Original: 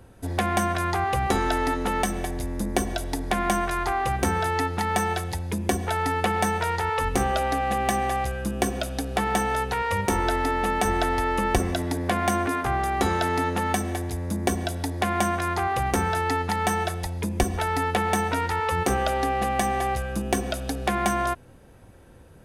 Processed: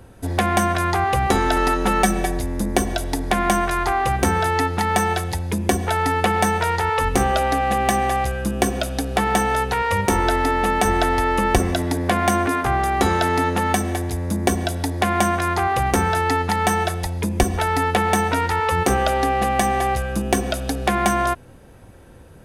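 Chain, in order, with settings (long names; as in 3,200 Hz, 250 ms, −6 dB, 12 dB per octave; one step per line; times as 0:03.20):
0:01.56–0:02.40: comb filter 5.3 ms, depth 73%
level +5 dB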